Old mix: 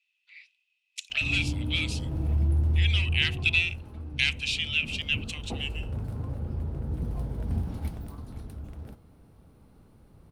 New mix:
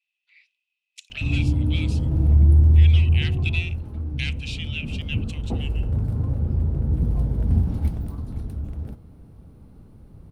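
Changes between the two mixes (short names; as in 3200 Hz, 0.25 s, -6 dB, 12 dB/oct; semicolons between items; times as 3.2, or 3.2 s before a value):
speech -6.0 dB; master: add low shelf 410 Hz +10.5 dB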